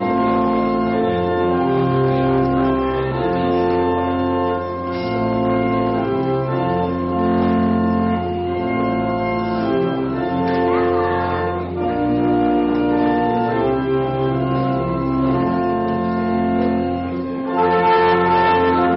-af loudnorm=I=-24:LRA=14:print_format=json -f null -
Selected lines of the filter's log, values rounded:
"input_i" : "-18.1",
"input_tp" : "-6.8",
"input_lra" : "2.5",
"input_thresh" : "-28.1",